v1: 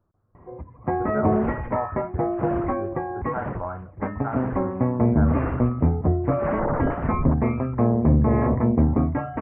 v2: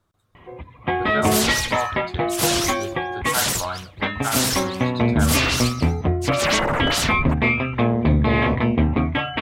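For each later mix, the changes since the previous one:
master: remove Gaussian low-pass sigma 6.9 samples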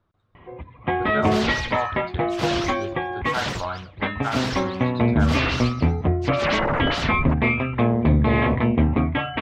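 master: add distance through air 220 m

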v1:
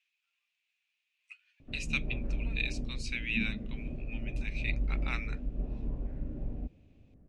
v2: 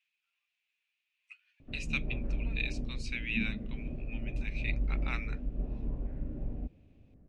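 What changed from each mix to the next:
speech: add treble shelf 4.5 kHz -6.5 dB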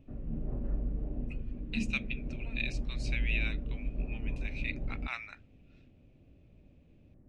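background: entry -1.60 s

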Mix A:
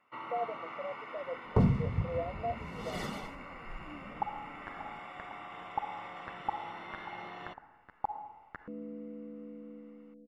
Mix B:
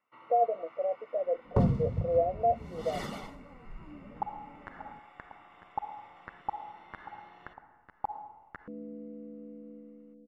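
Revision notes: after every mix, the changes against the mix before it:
speech +9.5 dB; first sound -11.5 dB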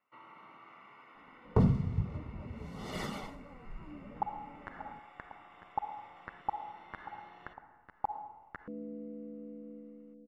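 speech: muted

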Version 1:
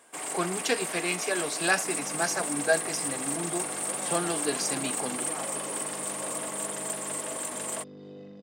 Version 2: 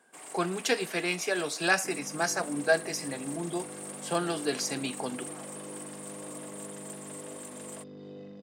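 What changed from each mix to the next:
first sound -11.0 dB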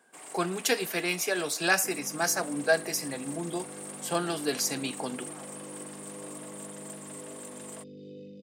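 speech: remove distance through air 51 m; second sound: add Chebyshev band-stop 540–2400 Hz, order 4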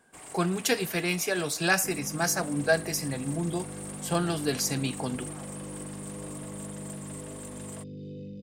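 master: remove high-pass 270 Hz 12 dB/octave

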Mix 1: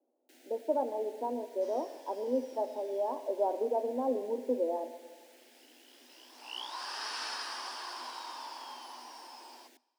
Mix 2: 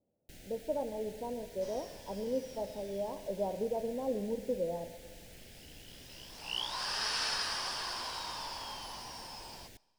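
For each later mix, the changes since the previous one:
speech -8.5 dB; master: remove rippled Chebyshev high-pass 240 Hz, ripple 6 dB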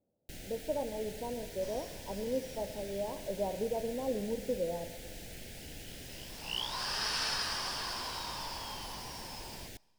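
first sound +6.5 dB

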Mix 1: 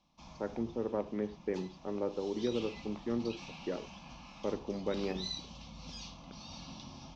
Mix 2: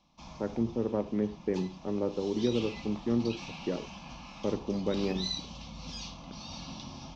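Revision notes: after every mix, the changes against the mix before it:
speech: add bass shelf 280 Hz +11.5 dB; background +5.0 dB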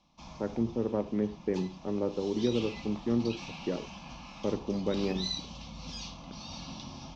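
no change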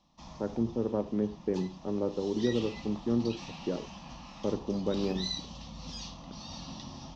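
background: remove Butterworth band-stop 1.9 kHz, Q 5.4; master: add peaking EQ 2.1 kHz -8.5 dB 0.56 oct

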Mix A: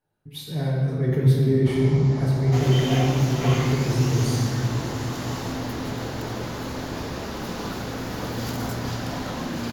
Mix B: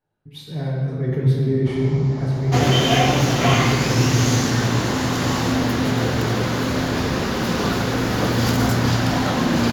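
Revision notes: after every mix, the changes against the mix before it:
speech: add treble shelf 8.3 kHz -7.5 dB; second sound +11.0 dB; master: add treble shelf 9.8 kHz -7 dB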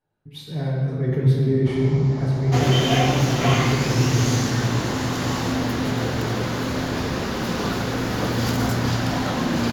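second sound -3.5 dB

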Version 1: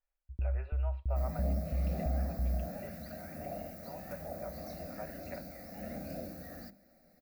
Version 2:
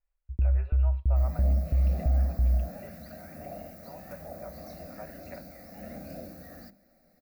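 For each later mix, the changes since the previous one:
first sound +9.0 dB; master: add peaking EQ 1.1 kHz +2.5 dB 0.31 oct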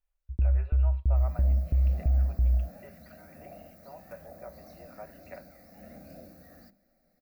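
first sound: remove distance through air 430 m; second sound -6.5 dB

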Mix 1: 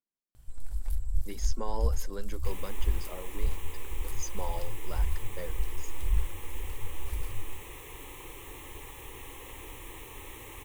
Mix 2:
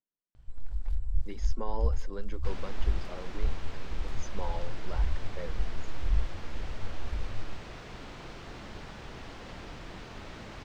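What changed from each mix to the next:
second sound: remove static phaser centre 980 Hz, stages 8; master: add distance through air 160 m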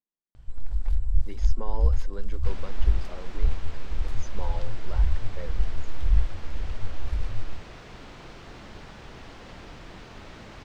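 first sound +6.5 dB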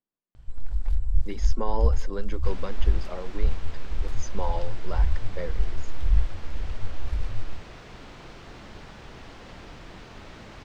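speech +7.0 dB

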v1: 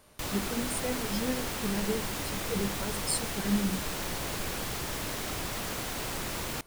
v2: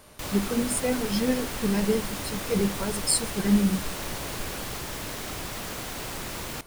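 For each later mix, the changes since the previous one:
speech +7.5 dB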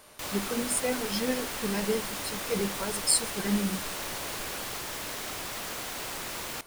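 master: add bass shelf 280 Hz -11 dB

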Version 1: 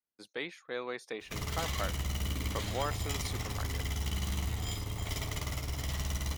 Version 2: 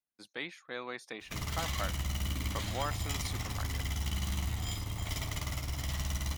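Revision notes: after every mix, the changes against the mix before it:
master: add peaking EQ 440 Hz -7.5 dB 0.51 oct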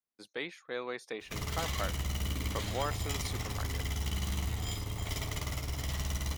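master: add peaking EQ 440 Hz +7.5 dB 0.51 oct

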